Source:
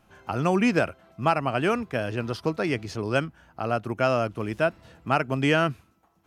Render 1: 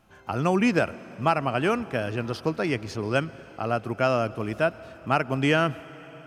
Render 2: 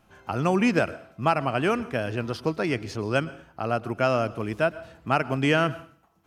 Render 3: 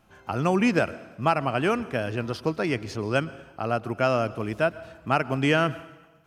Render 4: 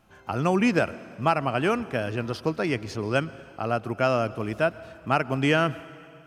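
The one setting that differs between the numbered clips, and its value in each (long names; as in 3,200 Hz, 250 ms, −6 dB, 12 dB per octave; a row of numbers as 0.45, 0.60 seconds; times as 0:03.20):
dense smooth reverb, RT60: 5, 0.51, 1.1, 2.3 seconds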